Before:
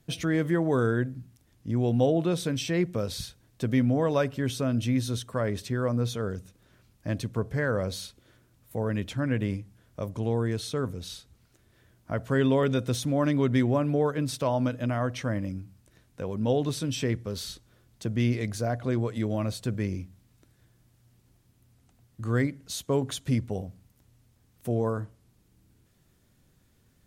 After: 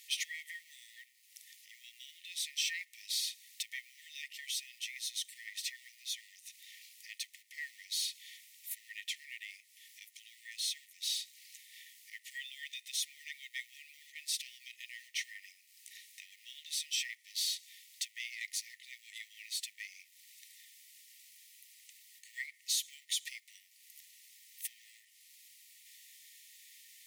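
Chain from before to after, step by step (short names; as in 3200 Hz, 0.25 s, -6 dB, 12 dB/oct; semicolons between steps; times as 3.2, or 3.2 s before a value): G.711 law mismatch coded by mu; compressor 2:1, threshold -42 dBFS, peak gain reduction 13 dB; brick-wall FIR high-pass 1800 Hz; gain +7.5 dB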